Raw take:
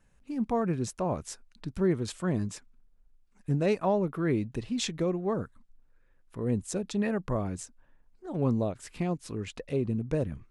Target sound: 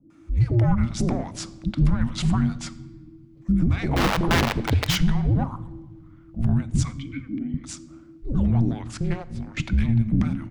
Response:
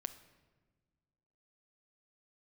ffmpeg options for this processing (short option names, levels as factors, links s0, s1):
-filter_complex "[0:a]asettb=1/sr,asplit=3[s0][s1][s2];[s0]atrim=end=8.874[s3];[s1]atrim=start=8.87:end=9.47,asetpts=PTS-STARTPTS,afade=t=in:d=0.004:c=qsin,afade=t=out:st=0.596:d=0.004:c=qsin,aeval=exprs='0.119*(cos(1*acos(clip(val(0)/0.119,-1,1)))-cos(1*PI/2))+0.0335*(cos(3*acos(clip(val(0)/0.119,-1,1)))-cos(3*PI/2))+0.00422*(cos(5*acos(clip(val(0)/0.119,-1,1)))-cos(5*PI/2))+0.00266*(cos(7*acos(clip(val(0)/0.119,-1,1)))-cos(7*PI/2))':c=same[s4];[s2]atrim=start=9.466[s5];[s3][s4]acrossfade=d=0.004:c1=hsin:c2=qsin[s6];[s6][s5]acrossfade=d=0.004:c1=qsin:c2=hsin,asoftclip=type=tanh:threshold=0.0944,afreqshift=-340,asettb=1/sr,asplit=3[s7][s8][s9];[s7]atrim=end=3.864[s10];[s8]atrim=start=3.86:end=4.89,asetpts=PTS-STARTPTS,afade=t=in:d=0.004:c=qsin,afade=t=out:st=1.026:d=0.004:c=qsin,aeval=exprs='(mod(18.8*val(0)+1,2)-1)/18.8':c=same[s11];[s9]atrim=start=4.886[s12];[s10][s11]acrossfade=d=0.004:c1=hsin:c2=qsin[s13];[s13][s12]acrossfade=d=0.004:c1=qsin:c2=hsin,asettb=1/sr,asplit=3[s14][s15][s16];[s14]atrim=end=6.854[s17];[s15]atrim=start=6.85:end=7.54,asetpts=PTS-STARTPTS,afade=t=in:d=0.004:c=qsin,afade=t=out:st=0.686:d=0.004:c=qsin,asplit=3[s18][s19][s20];[s18]bandpass=f=270:t=q:w=8,volume=1[s21];[s19]bandpass=f=2290:t=q:w=8,volume=0.501[s22];[s20]bandpass=f=3010:t=q:w=8,volume=0.355[s23];[s21][s22][s23]amix=inputs=3:normalize=0[s24];[s16]atrim=start=7.536[s25];[s17][s24]acrossfade=d=0.004:c1=hsin:c2=qsin[s26];[s26][s25]acrossfade=d=0.004:c1=qsin:c2=hsin,alimiter=limit=0.0668:level=0:latency=1:release=125,acrossover=split=480[s27][s28];[s28]adelay=100[s29];[s27][s29]amix=inputs=2:normalize=0,asplit=2[s30][s31];[1:a]atrim=start_sample=2205,asetrate=40572,aresample=44100,lowpass=5700[s32];[s31][s32]afir=irnorm=-1:irlink=0,volume=1.78[s33];[s30][s33]amix=inputs=2:normalize=0,volume=1.68"